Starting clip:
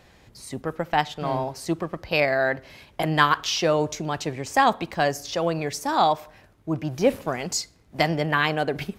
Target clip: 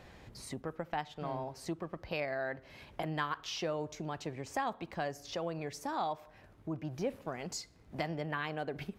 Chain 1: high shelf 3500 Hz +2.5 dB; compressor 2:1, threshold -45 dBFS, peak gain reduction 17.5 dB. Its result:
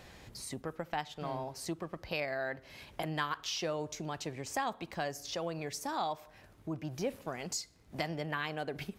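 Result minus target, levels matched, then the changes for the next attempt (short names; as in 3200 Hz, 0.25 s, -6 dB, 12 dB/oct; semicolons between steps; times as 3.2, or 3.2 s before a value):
8000 Hz band +4.5 dB
change: high shelf 3500 Hz -7 dB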